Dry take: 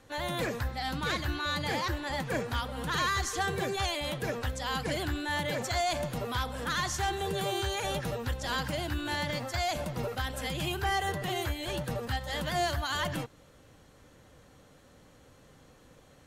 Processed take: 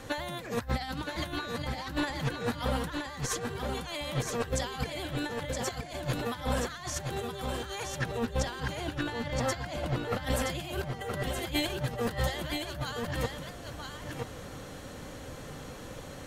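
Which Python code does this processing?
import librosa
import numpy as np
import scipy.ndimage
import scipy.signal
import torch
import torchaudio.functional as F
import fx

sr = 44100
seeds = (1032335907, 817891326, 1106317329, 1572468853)

y = fx.high_shelf(x, sr, hz=6400.0, db=-10.0, at=(8.01, 10.23))
y = fx.over_compress(y, sr, threshold_db=-39.0, ratio=-0.5)
y = y + 10.0 ** (-5.0 / 20.0) * np.pad(y, (int(971 * sr / 1000.0), 0))[:len(y)]
y = y * 10.0 ** (5.5 / 20.0)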